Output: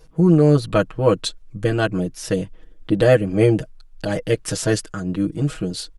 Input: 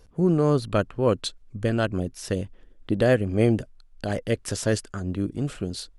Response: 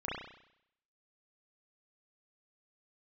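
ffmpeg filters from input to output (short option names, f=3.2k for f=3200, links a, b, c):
-af "aecho=1:1:6.3:0.96,volume=2.5dB"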